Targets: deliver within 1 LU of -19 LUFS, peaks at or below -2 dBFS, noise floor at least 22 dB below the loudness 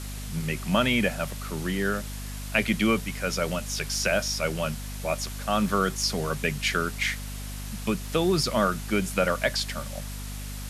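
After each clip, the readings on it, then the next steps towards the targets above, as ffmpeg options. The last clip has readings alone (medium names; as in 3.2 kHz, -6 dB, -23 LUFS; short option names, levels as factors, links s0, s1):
hum 50 Hz; highest harmonic 250 Hz; hum level -34 dBFS; noise floor -36 dBFS; noise floor target -49 dBFS; loudness -27.0 LUFS; peak level -8.5 dBFS; loudness target -19.0 LUFS
-> -af "bandreject=f=50:t=h:w=6,bandreject=f=100:t=h:w=6,bandreject=f=150:t=h:w=6,bandreject=f=200:t=h:w=6,bandreject=f=250:t=h:w=6"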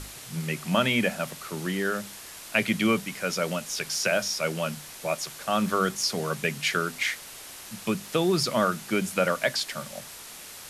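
hum not found; noise floor -43 dBFS; noise floor target -49 dBFS
-> -af "afftdn=nr=6:nf=-43"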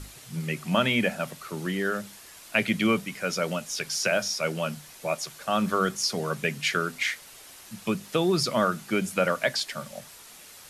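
noise floor -48 dBFS; noise floor target -50 dBFS
-> -af "afftdn=nr=6:nf=-48"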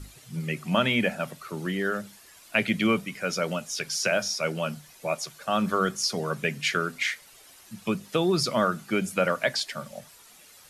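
noise floor -53 dBFS; loudness -27.5 LUFS; peak level -8.5 dBFS; loudness target -19.0 LUFS
-> -af "volume=2.66,alimiter=limit=0.794:level=0:latency=1"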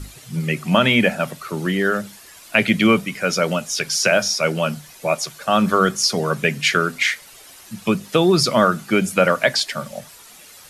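loudness -19.0 LUFS; peak level -2.0 dBFS; noise floor -44 dBFS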